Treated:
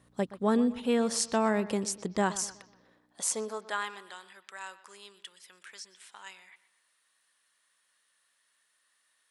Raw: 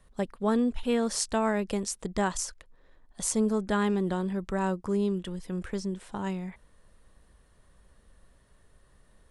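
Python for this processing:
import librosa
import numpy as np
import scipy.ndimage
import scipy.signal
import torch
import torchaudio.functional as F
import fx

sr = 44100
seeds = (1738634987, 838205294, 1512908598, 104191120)

y = fx.add_hum(x, sr, base_hz=60, snr_db=28)
y = fx.filter_sweep_highpass(y, sr, from_hz=140.0, to_hz=1900.0, start_s=2.53, end_s=4.18, q=0.76)
y = fx.echo_bbd(y, sr, ms=123, stages=4096, feedback_pct=41, wet_db=-16.5)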